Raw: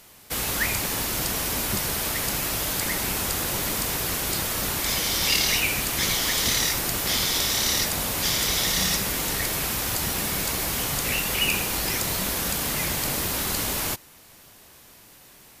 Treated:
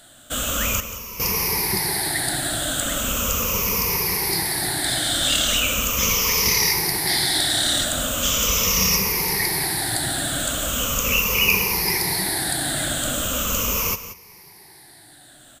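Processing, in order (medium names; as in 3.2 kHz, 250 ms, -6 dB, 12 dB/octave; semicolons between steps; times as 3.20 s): drifting ripple filter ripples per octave 0.82, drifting -0.39 Hz, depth 17 dB; 0.80–1.20 s: feedback comb 330 Hz, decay 0.72 s, mix 80%; on a send: delay 180 ms -13 dB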